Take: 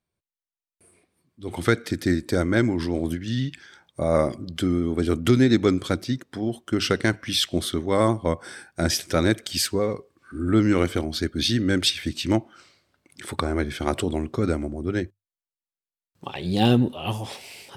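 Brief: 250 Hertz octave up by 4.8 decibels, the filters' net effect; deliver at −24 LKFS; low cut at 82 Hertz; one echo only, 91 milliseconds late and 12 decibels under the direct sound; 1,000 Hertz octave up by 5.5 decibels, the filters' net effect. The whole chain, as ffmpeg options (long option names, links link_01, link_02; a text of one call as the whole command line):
ffmpeg -i in.wav -af "highpass=82,equalizer=frequency=250:width_type=o:gain=5.5,equalizer=frequency=1000:width_type=o:gain=7,aecho=1:1:91:0.251,volume=-3.5dB" out.wav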